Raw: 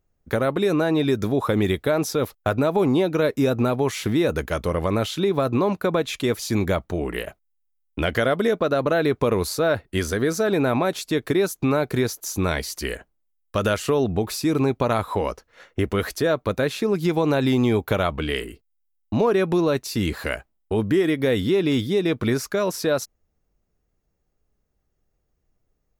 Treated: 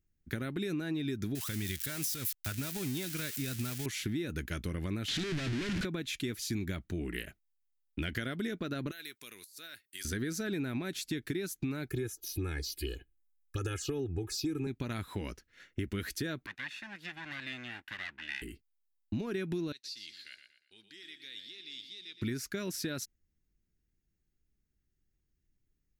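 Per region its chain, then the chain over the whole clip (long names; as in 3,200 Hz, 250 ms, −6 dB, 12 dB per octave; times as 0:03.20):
0:01.35–0:03.86: spike at every zero crossing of −16.5 dBFS + parametric band 350 Hz −9 dB 1.8 octaves
0:05.08–0:05.85: sign of each sample alone + low-pass filter 5,100 Hz
0:08.91–0:10.05: first difference + compressor whose output falls as the input rises −38 dBFS, ratio −0.5
0:11.88–0:14.67: notch filter 2,000 Hz, Q 7.5 + comb filter 2.4 ms, depth 96% + phaser swept by the level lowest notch 510 Hz, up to 4,600 Hz, full sweep at −16 dBFS
0:16.46–0:18.42: lower of the sound and its delayed copy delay 1.1 ms + resonant band-pass 1,800 Hz, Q 1.1
0:19.72–0:22.22: resonant band-pass 4,300 Hz, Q 3.3 + repeating echo 118 ms, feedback 38%, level −9 dB
whole clip: flat-topped bell 740 Hz −14.5 dB; downward compressor, threshold −25 dBFS; level −6.5 dB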